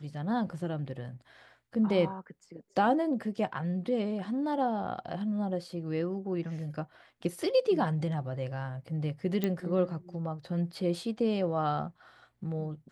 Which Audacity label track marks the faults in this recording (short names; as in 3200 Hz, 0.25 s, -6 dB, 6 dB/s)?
9.440000	9.440000	pop -16 dBFS